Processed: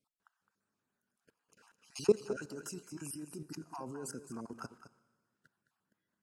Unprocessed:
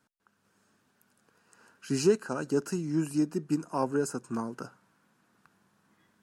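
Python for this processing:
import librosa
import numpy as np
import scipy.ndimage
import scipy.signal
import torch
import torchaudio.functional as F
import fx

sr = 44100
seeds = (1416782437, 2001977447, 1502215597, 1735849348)

y = fx.spec_dropout(x, sr, seeds[0], share_pct=26)
y = fx.high_shelf(y, sr, hz=3900.0, db=8.0, at=(2.42, 3.56))
y = fx.level_steps(y, sr, step_db=22)
y = y + 10.0 ** (-12.0 / 20.0) * np.pad(y, (int(212 * sr / 1000.0), 0))[:len(y)]
y = fx.rev_schroeder(y, sr, rt60_s=1.7, comb_ms=30, drr_db=20.0)
y = y * 10.0 ** (1.0 / 20.0)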